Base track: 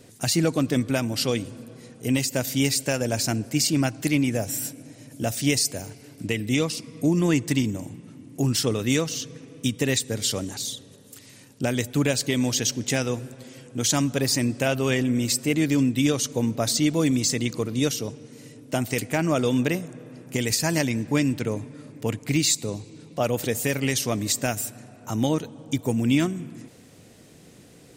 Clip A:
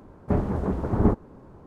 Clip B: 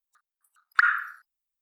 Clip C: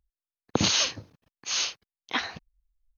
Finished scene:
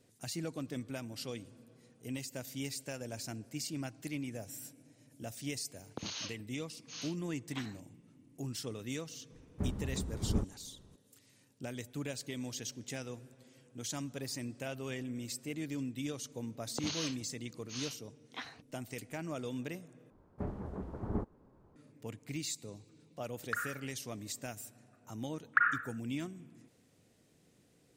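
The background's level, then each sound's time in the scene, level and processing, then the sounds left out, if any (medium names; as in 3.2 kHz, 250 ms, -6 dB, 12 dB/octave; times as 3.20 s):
base track -17.5 dB
5.42 s: add C -18 dB
9.30 s: add A -9 dB + peaking EQ 750 Hz -11 dB 2.8 oct
16.23 s: add C -15.5 dB
20.10 s: replace with A -15.5 dB
22.74 s: add B -16.5 dB
24.78 s: add B -7 dB + low-pass 2.4 kHz 24 dB/octave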